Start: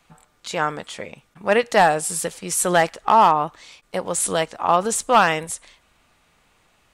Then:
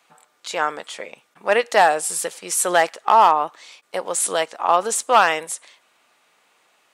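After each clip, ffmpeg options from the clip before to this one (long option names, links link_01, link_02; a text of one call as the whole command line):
ffmpeg -i in.wav -af "highpass=390,volume=1dB" out.wav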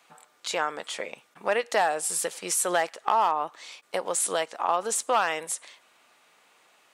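ffmpeg -i in.wav -af "acompressor=threshold=-27dB:ratio=2" out.wav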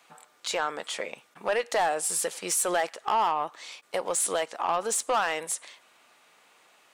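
ffmpeg -i in.wav -af "asoftclip=type=tanh:threshold=-18.5dB,volume=1dB" out.wav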